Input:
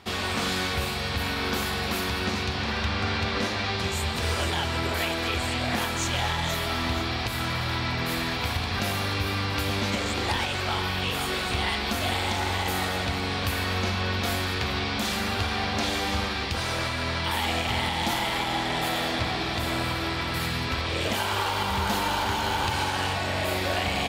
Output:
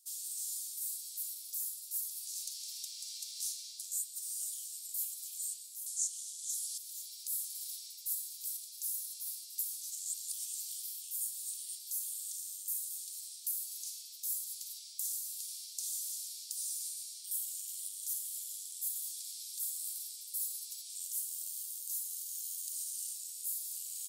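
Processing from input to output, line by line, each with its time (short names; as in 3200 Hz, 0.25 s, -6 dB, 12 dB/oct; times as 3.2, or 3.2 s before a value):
5.86–6.78 weighting filter ITU-R 468
whole clip: inverse Chebyshev high-pass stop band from 1500 Hz, stop band 80 dB; vocal rider 0.5 s; gain +4.5 dB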